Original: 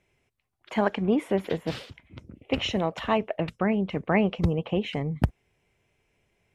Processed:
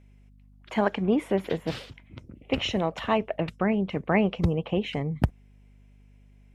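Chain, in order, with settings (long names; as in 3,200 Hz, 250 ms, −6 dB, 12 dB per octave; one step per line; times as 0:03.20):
mains hum 50 Hz, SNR 26 dB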